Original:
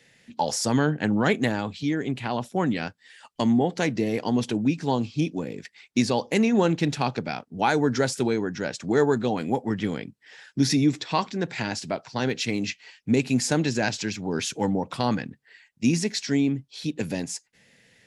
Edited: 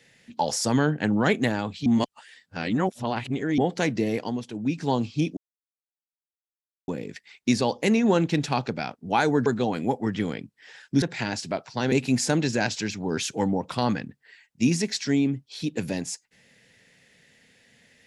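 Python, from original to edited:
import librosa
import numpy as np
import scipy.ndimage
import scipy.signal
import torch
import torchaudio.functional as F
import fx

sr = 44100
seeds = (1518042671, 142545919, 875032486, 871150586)

y = fx.edit(x, sr, fx.reverse_span(start_s=1.86, length_s=1.72),
    fx.fade_down_up(start_s=4.12, length_s=0.7, db=-10.5, fade_s=0.31),
    fx.insert_silence(at_s=5.37, length_s=1.51),
    fx.cut(start_s=7.95, length_s=1.15),
    fx.cut(start_s=10.66, length_s=0.75),
    fx.cut(start_s=12.31, length_s=0.83), tone=tone)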